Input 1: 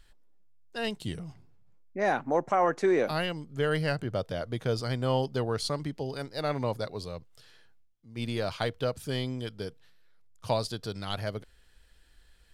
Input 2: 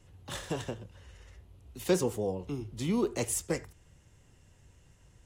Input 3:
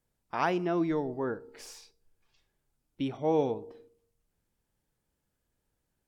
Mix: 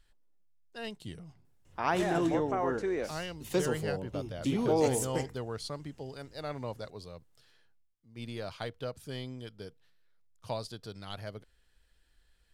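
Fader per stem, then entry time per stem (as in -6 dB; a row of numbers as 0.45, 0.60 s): -8.0, -3.0, -1.0 dB; 0.00, 1.65, 1.45 s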